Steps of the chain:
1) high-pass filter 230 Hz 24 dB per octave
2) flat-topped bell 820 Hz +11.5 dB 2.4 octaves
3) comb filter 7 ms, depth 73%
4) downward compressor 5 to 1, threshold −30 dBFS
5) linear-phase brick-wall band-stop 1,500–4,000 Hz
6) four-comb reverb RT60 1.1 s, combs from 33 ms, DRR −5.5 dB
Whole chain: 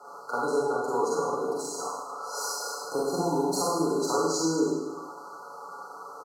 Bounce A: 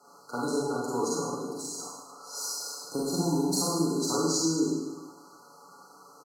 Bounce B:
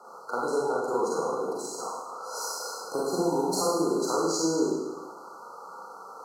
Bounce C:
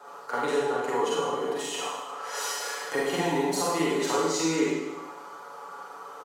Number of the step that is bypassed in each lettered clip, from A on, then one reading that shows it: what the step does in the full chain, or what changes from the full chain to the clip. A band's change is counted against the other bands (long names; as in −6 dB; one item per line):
2, 2 kHz band −8.5 dB
3, 125 Hz band −2.5 dB
5, 2 kHz band +7.0 dB